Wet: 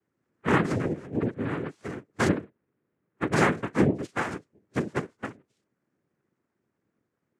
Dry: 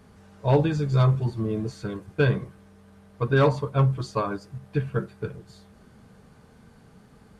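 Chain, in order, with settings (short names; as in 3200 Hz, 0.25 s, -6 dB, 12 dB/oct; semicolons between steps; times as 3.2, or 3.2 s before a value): Wiener smoothing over 9 samples; spectral noise reduction 22 dB; 0.65–1.25 negative-ratio compressor -26 dBFS, ratio -0.5; 2.28–3.32 LPF 1100 Hz 24 dB/oct; noise vocoder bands 3; gain -2.5 dB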